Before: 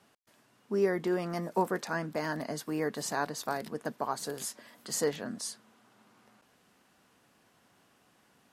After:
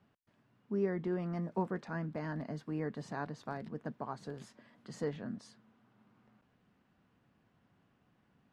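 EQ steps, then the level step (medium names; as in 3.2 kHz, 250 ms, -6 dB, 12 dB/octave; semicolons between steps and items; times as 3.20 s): distance through air 73 m; tone controls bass +12 dB, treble -9 dB; -8.5 dB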